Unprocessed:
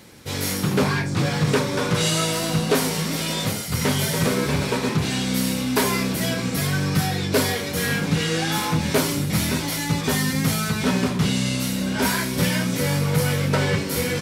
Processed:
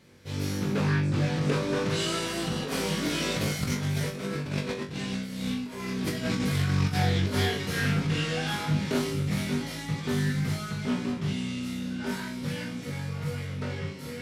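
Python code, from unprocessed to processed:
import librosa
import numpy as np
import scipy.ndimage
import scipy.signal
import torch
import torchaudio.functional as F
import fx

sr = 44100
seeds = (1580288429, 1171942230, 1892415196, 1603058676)

y = fx.doppler_pass(x, sr, speed_mps=9, closest_m=9.3, pass_at_s=5.04)
y = fx.doubler(y, sr, ms=33.0, db=-10)
y = fx.over_compress(y, sr, threshold_db=-29.0, ratio=-0.5)
y = fx.lowpass(y, sr, hz=3500.0, slope=6)
y = fx.peak_eq(y, sr, hz=850.0, db=-4.5, octaves=1.3)
y = fx.room_flutter(y, sr, wall_m=3.5, rt60_s=0.29)
y = fx.doppler_dist(y, sr, depth_ms=0.18)
y = F.gain(torch.from_numpy(y), 1.5).numpy()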